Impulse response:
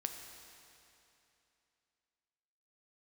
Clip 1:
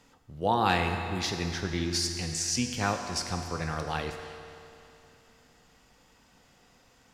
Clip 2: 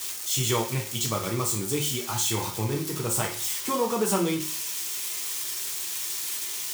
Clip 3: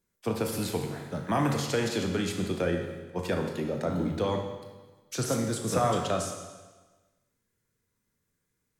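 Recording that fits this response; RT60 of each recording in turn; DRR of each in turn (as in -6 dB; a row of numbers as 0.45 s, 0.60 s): 1; 2.9 s, 0.45 s, 1.3 s; 4.5 dB, -1.0 dB, 3.0 dB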